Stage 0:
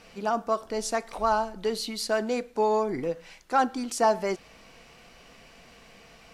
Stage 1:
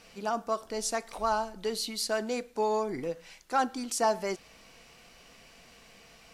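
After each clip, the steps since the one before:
high-shelf EQ 3,700 Hz +7 dB
level −4.5 dB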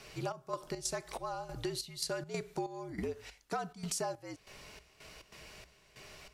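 gate pattern "xxx..xx.xxx..." 141 BPM −12 dB
frequency shifter −66 Hz
downward compressor 12 to 1, threshold −36 dBFS, peak gain reduction 15 dB
level +2.5 dB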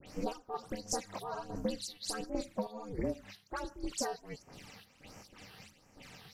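all-pass dispersion highs, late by 71 ms, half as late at 2,400 Hz
all-pass phaser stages 12, 1.4 Hz, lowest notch 120–3,800 Hz
ring modulation 150 Hz
level +5 dB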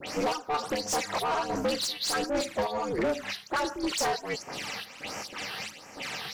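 mid-hump overdrive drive 27 dB, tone 5,600 Hz, clips at −19 dBFS

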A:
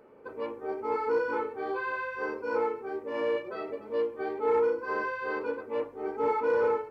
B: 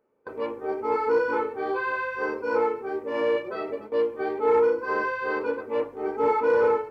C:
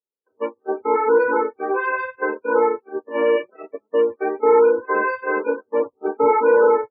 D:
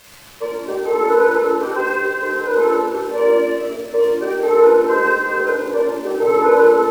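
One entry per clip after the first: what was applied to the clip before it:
noise gate with hold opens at −33 dBFS; level +5 dB
noise gate −28 dBFS, range −37 dB; spectral peaks only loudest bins 32; level +6.5 dB
surface crackle 580 per second −29 dBFS; rectangular room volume 2,100 cubic metres, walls mixed, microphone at 5.2 metres; level −5 dB

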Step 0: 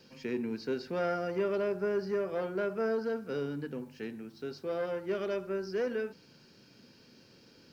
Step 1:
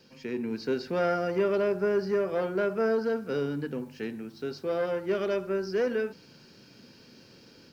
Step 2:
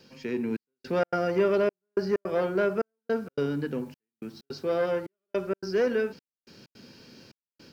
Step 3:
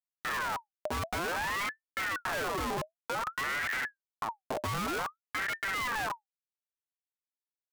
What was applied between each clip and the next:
automatic gain control gain up to 5 dB
gate pattern "xxxxxx...xx." 160 BPM −60 dB; level +2.5 dB
comparator with hysteresis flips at −34 dBFS; ring modulator whose carrier an LFO sweeps 1,200 Hz, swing 50%, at 0.54 Hz

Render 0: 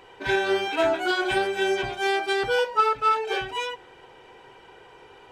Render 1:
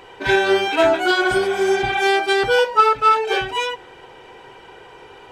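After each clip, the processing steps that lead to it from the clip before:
healed spectral selection 0:01.26–0:01.99, 510–4,000 Hz both
level +7 dB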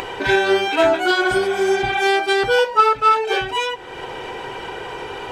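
upward compression, threshold −18 dBFS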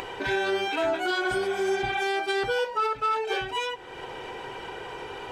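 brickwall limiter −10.5 dBFS, peak gain reduction 7 dB
level −7.5 dB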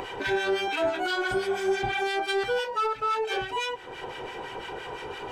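in parallel at −6.5 dB: soft clipping −30.5 dBFS, distortion −8 dB
on the sum: two-band tremolo in antiphase 5.9 Hz, depth 70%, crossover 1,200 Hz
level +1 dB

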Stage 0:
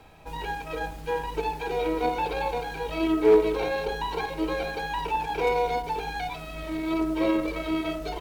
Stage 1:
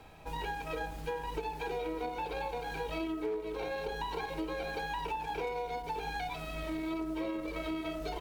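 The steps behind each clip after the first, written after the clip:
downward compressor 10 to 1, threshold −31 dBFS, peak gain reduction 17.5 dB
level −2 dB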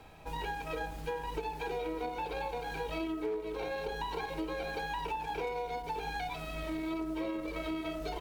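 no processing that can be heard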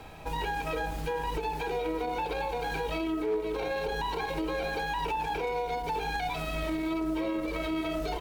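brickwall limiter −31 dBFS, peak gain reduction 5.5 dB
level +7.5 dB

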